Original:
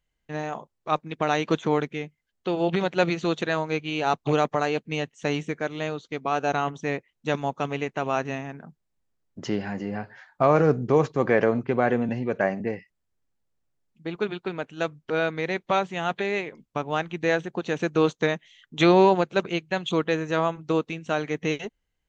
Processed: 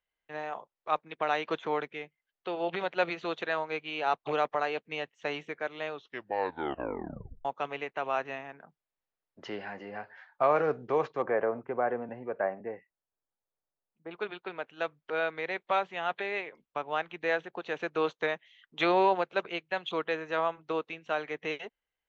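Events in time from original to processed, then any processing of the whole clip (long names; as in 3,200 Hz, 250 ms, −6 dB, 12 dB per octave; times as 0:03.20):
0:05.92: tape stop 1.53 s
0:11.22–0:14.11: low-pass filter 1,300 Hz
whole clip: three-way crossover with the lows and the highs turned down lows −16 dB, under 430 Hz, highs −23 dB, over 4,200 Hz; level −3.5 dB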